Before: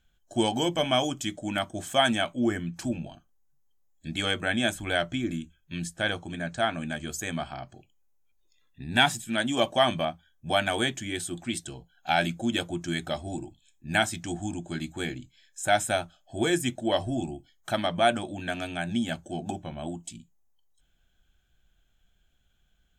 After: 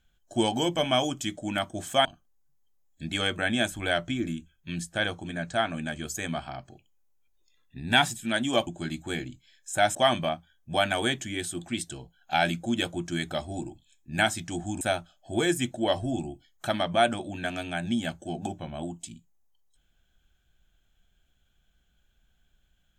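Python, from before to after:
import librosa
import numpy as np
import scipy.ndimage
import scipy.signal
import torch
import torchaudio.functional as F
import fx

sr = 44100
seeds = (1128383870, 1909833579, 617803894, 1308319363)

y = fx.edit(x, sr, fx.cut(start_s=2.05, length_s=1.04),
    fx.move(start_s=14.57, length_s=1.28, to_s=9.71), tone=tone)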